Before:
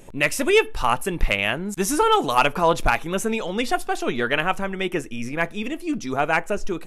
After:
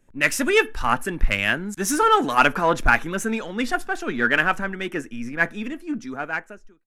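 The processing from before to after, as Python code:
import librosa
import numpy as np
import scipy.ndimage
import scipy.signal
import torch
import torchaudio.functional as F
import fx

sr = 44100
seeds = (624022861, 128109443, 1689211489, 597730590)

p1 = fx.fade_out_tail(x, sr, length_s=1.15)
p2 = np.clip(10.0 ** (25.5 / 20.0) * p1, -1.0, 1.0) / 10.0 ** (25.5 / 20.0)
p3 = p1 + (p2 * 10.0 ** (-6.0 / 20.0))
p4 = fx.graphic_eq_15(p3, sr, hz=(250, 1600, 6300), db=(8, 11, 3))
p5 = fx.band_widen(p4, sr, depth_pct=70)
y = p5 * 10.0 ** (-5.5 / 20.0)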